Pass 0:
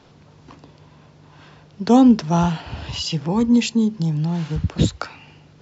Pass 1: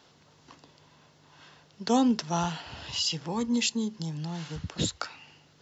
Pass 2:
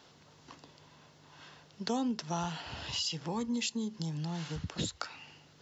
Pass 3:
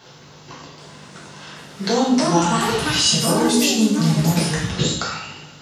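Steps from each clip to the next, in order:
spectral tilt +2.5 dB per octave; notch filter 2,400 Hz, Q 15; level −7 dB
downward compressor 2.5 to 1, threshold −34 dBFS, peak gain reduction 10.5 dB
coupled-rooms reverb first 0.72 s, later 2.2 s, DRR −6.5 dB; delay with pitch and tempo change per echo 779 ms, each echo +5 semitones, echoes 2; level +8.5 dB

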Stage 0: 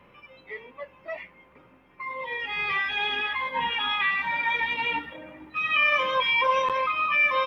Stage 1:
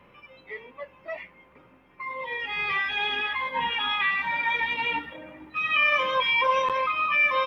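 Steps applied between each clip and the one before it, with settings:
no processing that can be heard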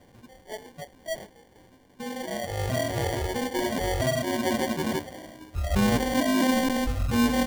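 decimation without filtering 34×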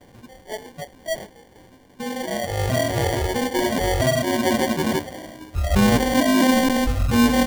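noise gate with hold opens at −53 dBFS
level +6 dB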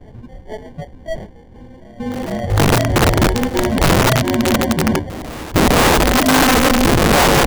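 RIAA equalisation playback
wrap-around overflow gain 7 dB
backwards echo 459 ms −19 dB

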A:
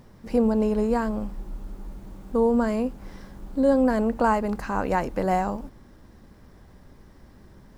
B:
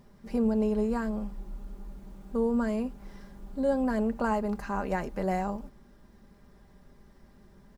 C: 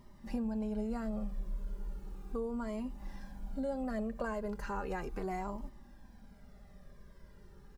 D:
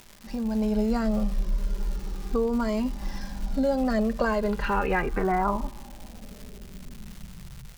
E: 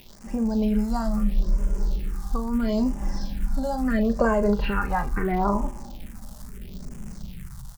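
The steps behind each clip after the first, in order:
comb filter 5 ms, depth 51%; level −7 dB
downward compressor 3 to 1, threshold −33 dBFS, peak gain reduction 9 dB; flanger whose copies keep moving one way falling 0.36 Hz; level +3 dB
automatic gain control gain up to 12 dB; low-pass filter sweep 5,500 Hz → 130 Hz, 0:04.16–0:07.59; surface crackle 400 per second −36 dBFS
all-pass phaser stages 4, 0.75 Hz, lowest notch 380–4,000 Hz; double-tracking delay 39 ms −11 dB; level +3.5 dB

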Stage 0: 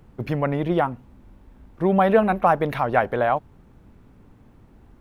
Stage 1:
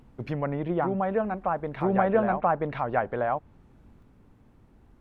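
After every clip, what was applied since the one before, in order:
treble cut that deepens with the level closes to 1,900 Hz, closed at −18 dBFS
backwards echo 982 ms −3.5 dB
level −6 dB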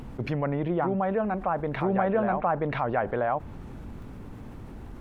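envelope flattener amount 50%
level −3.5 dB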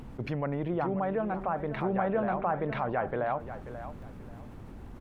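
repeating echo 536 ms, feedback 25%, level −12 dB
level −4 dB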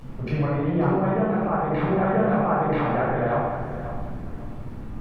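rectangular room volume 1,000 cubic metres, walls mixed, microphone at 5.8 metres
level −4 dB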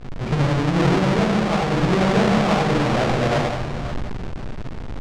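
each half-wave held at its own peak
high-frequency loss of the air 110 metres

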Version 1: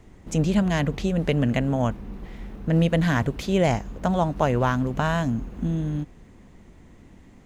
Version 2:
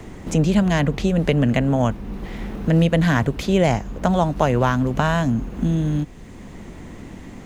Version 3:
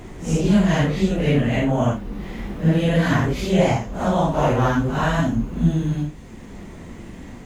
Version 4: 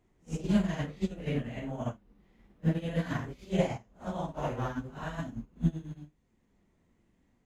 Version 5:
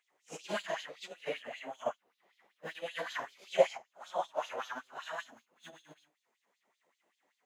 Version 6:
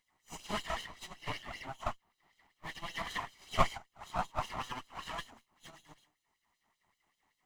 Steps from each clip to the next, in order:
multiband upward and downward compressor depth 40%; level +4 dB
random phases in long frames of 200 ms
expander for the loud parts 2.5 to 1, over −29 dBFS; level −8 dB
auto-filter high-pass sine 5.2 Hz 550–4,100 Hz
lower of the sound and its delayed copy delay 0.99 ms; level +1.5 dB

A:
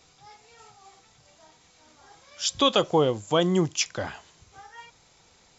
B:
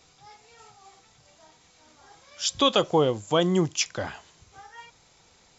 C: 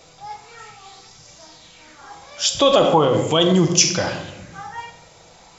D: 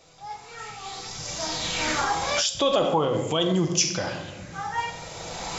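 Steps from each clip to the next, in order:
no processing that can be heard
convolution reverb RT60 1.1 s, pre-delay 6 ms, DRR 5.5 dB; boost into a limiter +15 dB; auto-filter bell 0.39 Hz 580–5,800 Hz +9 dB; level −7 dB
camcorder AGC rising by 15 dB per second; level −7.5 dB

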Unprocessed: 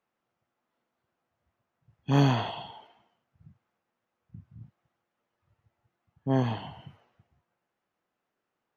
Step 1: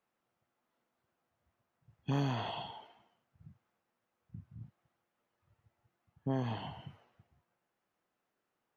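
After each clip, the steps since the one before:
downward compressor 3 to 1, threshold −31 dBFS, peak gain reduction 10.5 dB
level −1.5 dB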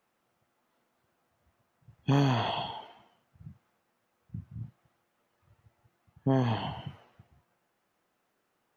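convolution reverb, pre-delay 8 ms, DRR 22 dB
level +8 dB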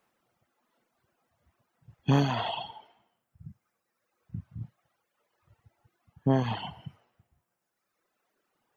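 reverb reduction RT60 1.7 s
level +2.5 dB

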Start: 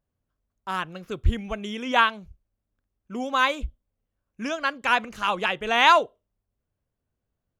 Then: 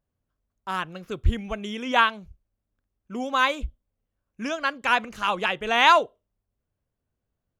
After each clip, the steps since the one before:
no processing that can be heard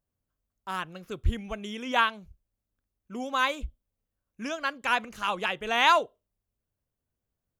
high-shelf EQ 8,500 Hz +7.5 dB
level −4.5 dB

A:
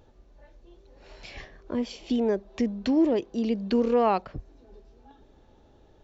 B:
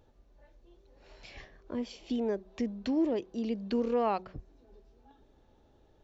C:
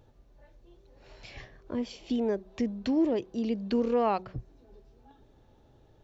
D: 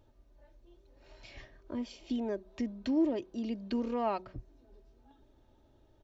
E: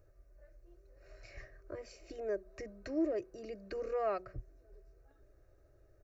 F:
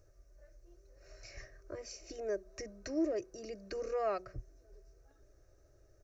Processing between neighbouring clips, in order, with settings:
hum removal 185.6 Hz, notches 2; level −6.5 dB
parametric band 120 Hz +9 dB 0.5 octaves; level +2.5 dB
comb filter 3.2 ms, depth 45%; level −5.5 dB
phaser with its sweep stopped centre 900 Hz, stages 6; level +1.5 dB
parametric band 5,900 Hz +13.5 dB 0.59 octaves

